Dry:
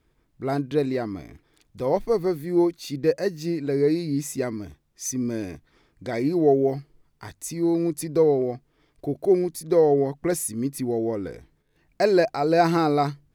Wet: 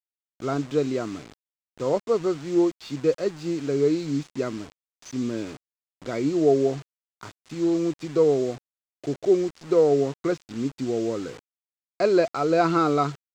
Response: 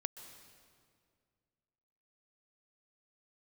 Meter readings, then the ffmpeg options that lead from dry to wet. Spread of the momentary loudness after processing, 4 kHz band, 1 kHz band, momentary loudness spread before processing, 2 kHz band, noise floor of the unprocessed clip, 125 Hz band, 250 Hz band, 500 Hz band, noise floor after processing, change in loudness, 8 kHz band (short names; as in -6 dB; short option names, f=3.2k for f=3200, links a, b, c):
14 LU, -0.5 dB, -1.5 dB, 14 LU, -2.0 dB, -68 dBFS, -2.5 dB, -0.5 dB, -0.5 dB, under -85 dBFS, -0.5 dB, -9.0 dB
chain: -af "highpass=f=110:w=0.5412,highpass=f=110:w=1.3066,equalizer=f=180:t=q:w=4:g=-4,equalizer=f=810:t=q:w=4:g=-7,equalizer=f=1.3k:t=q:w=4:g=9,equalizer=f=1.8k:t=q:w=4:g=-10,lowpass=f=4.3k:w=0.5412,lowpass=f=4.3k:w=1.3066,aresample=16000,acrusher=bits=6:mix=0:aa=0.000001,aresample=44100,aeval=exprs='sgn(val(0))*max(abs(val(0))-0.00211,0)':c=same"